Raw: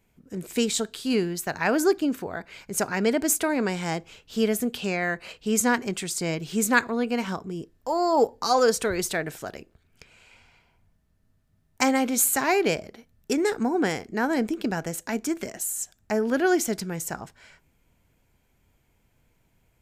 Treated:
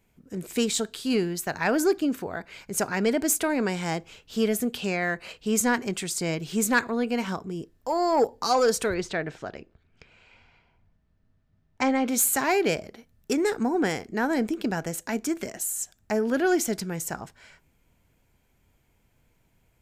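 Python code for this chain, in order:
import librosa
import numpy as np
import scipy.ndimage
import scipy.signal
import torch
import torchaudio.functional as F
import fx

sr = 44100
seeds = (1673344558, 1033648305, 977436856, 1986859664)

y = 10.0 ** (-12.0 / 20.0) * np.tanh(x / 10.0 ** (-12.0 / 20.0))
y = fx.air_absorb(y, sr, metres=140.0, at=(8.94, 12.08))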